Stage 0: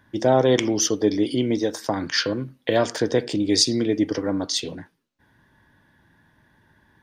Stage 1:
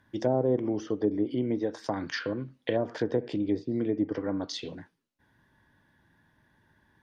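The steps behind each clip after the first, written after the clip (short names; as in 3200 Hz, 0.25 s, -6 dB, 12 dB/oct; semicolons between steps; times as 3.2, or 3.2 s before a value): treble ducked by the level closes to 630 Hz, closed at -15 dBFS; gain -6.5 dB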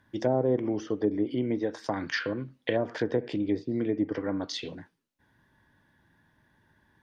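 dynamic EQ 2100 Hz, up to +5 dB, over -48 dBFS, Q 1.1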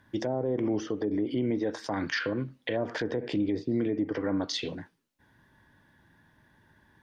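limiter -23.5 dBFS, peak gain reduction 10 dB; gain +3.5 dB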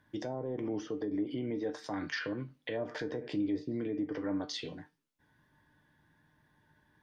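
resonator 150 Hz, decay 0.2 s, harmonics all, mix 70%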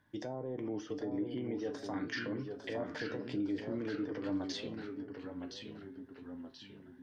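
echoes that change speed 0.749 s, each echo -1 st, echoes 3, each echo -6 dB; gain -3 dB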